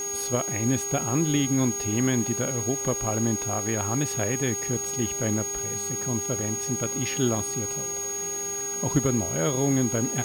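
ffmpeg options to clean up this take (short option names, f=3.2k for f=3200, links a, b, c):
-af "adeclick=t=4,bandreject=f=400.6:t=h:w=4,bandreject=f=801.2:t=h:w=4,bandreject=f=1.2018k:t=h:w=4,bandreject=f=1.6024k:t=h:w=4,bandreject=f=2.003k:t=h:w=4,bandreject=f=2.4036k:t=h:w=4,bandreject=f=6.6k:w=30,afwtdn=0.0063"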